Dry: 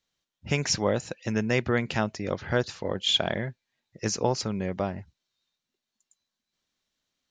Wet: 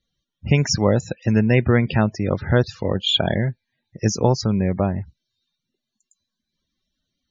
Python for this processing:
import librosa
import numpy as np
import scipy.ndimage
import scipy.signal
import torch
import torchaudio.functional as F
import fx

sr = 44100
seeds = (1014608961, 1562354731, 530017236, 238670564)

y = fx.spec_topn(x, sr, count=64)
y = fx.low_shelf(y, sr, hz=230.0, db=10.5)
y = y * librosa.db_to_amplitude(4.5)